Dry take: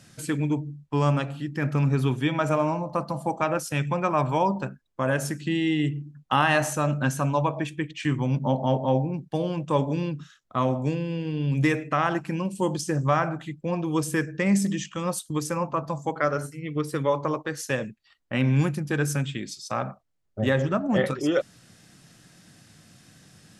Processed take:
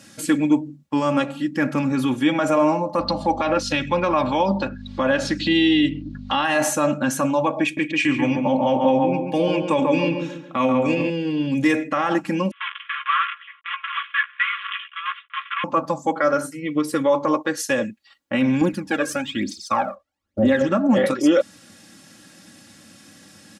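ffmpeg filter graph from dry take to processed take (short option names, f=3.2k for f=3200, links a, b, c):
-filter_complex "[0:a]asettb=1/sr,asplit=3[a][b][c];[a]atrim=end=2.994[d];[b]atrim=start=2.99:end=6.45,asetpts=PTS-STARTPTS,afade=t=in:d=0.004:c=qsin,afade=t=out:st=3.456:d=0.004:c=qsin,acompressor=mode=upward:threshold=-26dB:ratio=2.5:attack=3.2:release=140:knee=2.83:detection=peak,lowpass=f=4.1k:t=q:w=3.3,aeval=exprs='val(0)+0.02*(sin(2*PI*50*n/s)+sin(2*PI*2*50*n/s)/2+sin(2*PI*3*50*n/s)/3+sin(2*PI*4*50*n/s)/4+sin(2*PI*5*50*n/s)/5)':c=same[e];[c]atrim=start=6.446[f];[d][e]acrossfade=d=0.004:c1=hsin:c2=qsin[g];[g][f]acrossfade=d=0.004:c1=qsin:c2=hsin,asettb=1/sr,asplit=3[h][i][j];[h]atrim=end=7.634[k];[i]atrim=start=7.63:end=11.1,asetpts=PTS-STARTPTS,afade=t=in:d=0.004:c=qsin,afade=t=out:st=3.466:d=0.004:c=qsin,equalizer=f=2.4k:t=o:w=0.37:g=12.5,asplit=2[l][m];[m]adelay=139,lowpass=f=1.9k:p=1,volume=-5dB,asplit=2[n][o];[o]adelay=139,lowpass=f=1.9k:p=1,volume=0.4,asplit=2[p][q];[q]adelay=139,lowpass=f=1.9k:p=1,volume=0.4,asplit=2[r][s];[s]adelay=139,lowpass=f=1.9k:p=1,volume=0.4,asplit=2[t][u];[u]adelay=139,lowpass=f=1.9k:p=1,volume=0.4[v];[l][n][p][r][t][v]amix=inputs=6:normalize=0,atrim=end_sample=153027[w];[j]atrim=start=11.096[x];[k][w]acrossfade=d=0.004:c1=hsin:c2=qsin[y];[y][x]acrossfade=d=0.004:c1=qsin:c2=hsin,asettb=1/sr,asplit=3[z][aa][ab];[z]atrim=end=12.514[ac];[aa]atrim=start=12.51:end=15.64,asetpts=PTS-STARTPTS,afade=t=in:d=0.004:c=qsin,afade=t=out:st=3.126:d=0.004:c=qsin,acrusher=bits=5:dc=4:mix=0:aa=0.000001,asuperpass=centerf=1900:order=20:qfactor=0.82,asplit=2[ad][ae];[ae]adelay=15,volume=-8dB[af];[ad][af]amix=inputs=2:normalize=0,atrim=end_sample=138033[ag];[ab]atrim=start=15.636[ah];[ac][ag]acrossfade=d=0.004:c1=hsin:c2=qsin[ai];[ai][ah]acrossfade=d=0.004:c1=qsin:c2=hsin,asettb=1/sr,asplit=3[aj][ak][al];[aj]atrim=end=18.614[am];[ak]atrim=start=18.61:end=20.61,asetpts=PTS-STARTPTS,afade=t=in:d=0.004:c=qsin,afade=t=out:st=1.996:d=0.004:c=qsin,lowpass=f=2.9k:p=1,aphaser=in_gain=1:out_gain=1:delay=1.9:decay=0.7:speed=1.1:type=triangular,equalizer=f=140:t=o:w=0.45:g=-12[an];[al]atrim=start=20.606[ao];[am][an]acrossfade=d=0.004:c1=hsin:c2=qsin[ap];[ap][ao]acrossfade=d=0.004:c1=qsin:c2=hsin,alimiter=limit=-16.5dB:level=0:latency=1:release=31,highpass=110,aecho=1:1:3.6:0.71,volume=5.5dB"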